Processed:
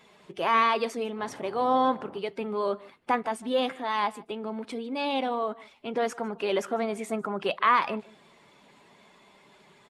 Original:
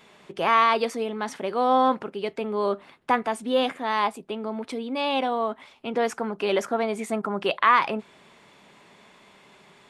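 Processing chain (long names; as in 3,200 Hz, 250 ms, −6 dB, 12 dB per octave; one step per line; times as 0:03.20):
spectral magnitudes quantised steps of 15 dB
0:01.17–0:02.18: noise in a band 100–990 Hz −44 dBFS
slap from a distant wall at 26 metres, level −22 dB
level −3 dB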